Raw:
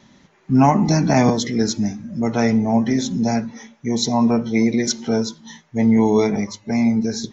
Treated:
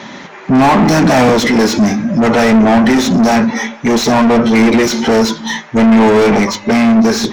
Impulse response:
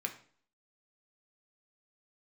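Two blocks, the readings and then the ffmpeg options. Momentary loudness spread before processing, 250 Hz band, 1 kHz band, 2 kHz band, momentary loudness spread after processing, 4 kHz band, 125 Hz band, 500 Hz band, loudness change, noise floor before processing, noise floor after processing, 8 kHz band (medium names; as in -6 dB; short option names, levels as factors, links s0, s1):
10 LU, +8.0 dB, +10.0 dB, +14.5 dB, 6 LU, +9.5 dB, +3.5 dB, +10.0 dB, +8.0 dB, -57 dBFS, -33 dBFS, no reading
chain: -filter_complex "[0:a]asplit=2[s0][s1];[s1]highpass=f=720:p=1,volume=44.7,asoftclip=type=tanh:threshold=0.631[s2];[s0][s2]amix=inputs=2:normalize=0,lowpass=f=1700:p=1,volume=0.501,asplit=2[s3][s4];[1:a]atrim=start_sample=2205[s5];[s4][s5]afir=irnorm=-1:irlink=0,volume=0.237[s6];[s3][s6]amix=inputs=2:normalize=0,volume=1.12"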